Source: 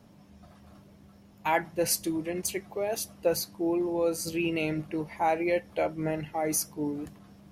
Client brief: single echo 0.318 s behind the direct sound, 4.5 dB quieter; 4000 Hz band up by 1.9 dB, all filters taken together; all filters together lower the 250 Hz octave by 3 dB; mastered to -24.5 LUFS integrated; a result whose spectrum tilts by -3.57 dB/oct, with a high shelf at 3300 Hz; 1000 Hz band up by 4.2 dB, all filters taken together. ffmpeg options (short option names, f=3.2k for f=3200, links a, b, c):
-af "equalizer=f=250:t=o:g=-5.5,equalizer=f=1k:t=o:g=6,highshelf=f=3.3k:g=-4.5,equalizer=f=4k:t=o:g=6,aecho=1:1:318:0.596,volume=3.5dB"